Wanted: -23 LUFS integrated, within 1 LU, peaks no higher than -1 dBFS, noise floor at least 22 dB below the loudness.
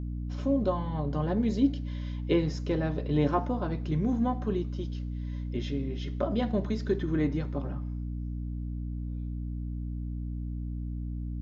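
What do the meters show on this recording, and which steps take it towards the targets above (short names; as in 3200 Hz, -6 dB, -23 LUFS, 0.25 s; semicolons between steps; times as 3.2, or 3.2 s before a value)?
hum 60 Hz; harmonics up to 300 Hz; hum level -32 dBFS; loudness -31.5 LUFS; peak -13.0 dBFS; loudness target -23.0 LUFS
-> notches 60/120/180/240/300 Hz; gain +8.5 dB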